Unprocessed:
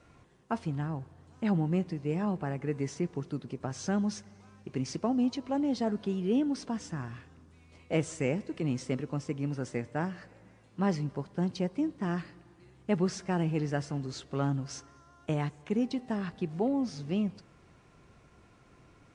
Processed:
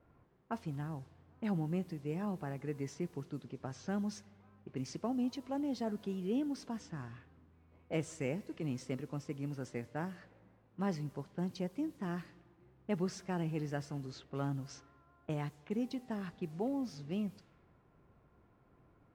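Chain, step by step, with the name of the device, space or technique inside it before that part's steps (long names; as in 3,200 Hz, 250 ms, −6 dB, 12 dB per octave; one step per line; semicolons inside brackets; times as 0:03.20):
cassette deck with a dynamic noise filter (white noise bed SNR 30 dB; low-pass that shuts in the quiet parts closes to 1,100 Hz, open at −29 dBFS)
level −7 dB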